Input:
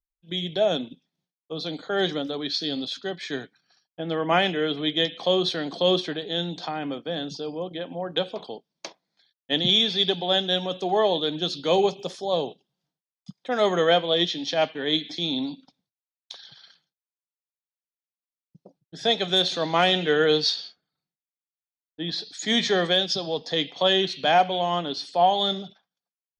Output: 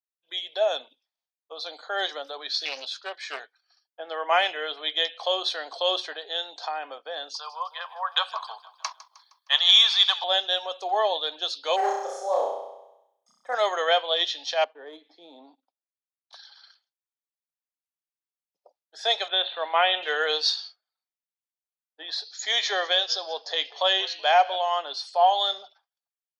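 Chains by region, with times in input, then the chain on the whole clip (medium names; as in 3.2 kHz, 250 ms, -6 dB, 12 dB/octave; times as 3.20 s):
2.65–3.40 s: high-pass 190 Hz 24 dB/octave + loudspeaker Doppler distortion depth 0.28 ms
7.34–10.24 s: resonant high-pass 1.1 kHz, resonance Q 6.2 + treble shelf 4.4 kHz +9.5 dB + feedback delay 155 ms, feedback 53%, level -16.5 dB
11.76–13.55 s: high-order bell 3.5 kHz -15.5 dB 1.2 oct + hard clipper -16 dBFS + flutter echo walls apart 5.6 m, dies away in 0.97 s
14.64–16.33 s: waveshaping leveller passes 1 + band-pass filter 180 Hz, Q 0.82
19.28–20.03 s: companding laws mixed up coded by A + steep low-pass 3.6 kHz 72 dB/octave
22.25–24.56 s: brick-wall FIR band-pass 230–7400 Hz + frequency-shifting echo 188 ms, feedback 37%, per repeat -54 Hz, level -20 dB
whole clip: high-pass 590 Hz 24 dB/octave; spectral noise reduction 6 dB; peaking EQ 950 Hz +2 dB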